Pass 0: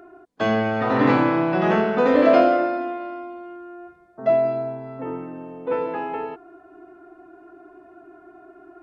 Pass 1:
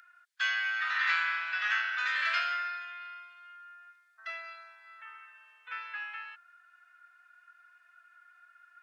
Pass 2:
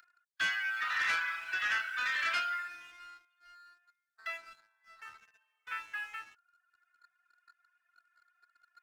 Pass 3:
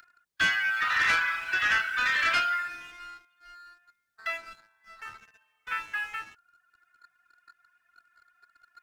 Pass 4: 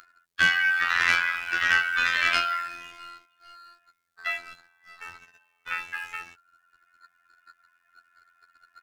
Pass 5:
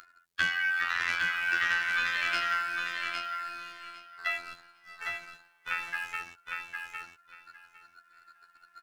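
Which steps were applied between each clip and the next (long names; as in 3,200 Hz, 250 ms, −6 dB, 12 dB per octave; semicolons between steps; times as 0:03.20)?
Chebyshev high-pass filter 1,500 Hz, order 4; level +1.5 dB
reverb reduction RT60 0.94 s; leveller curve on the samples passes 2; level −6.5 dB
low-shelf EQ 400 Hz +9.5 dB; level +6.5 dB
phases set to zero 86.2 Hz; level +5 dB
downward compressor 4 to 1, threshold −26 dBFS, peak gain reduction 9.5 dB; on a send: repeating echo 807 ms, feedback 17%, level −4.5 dB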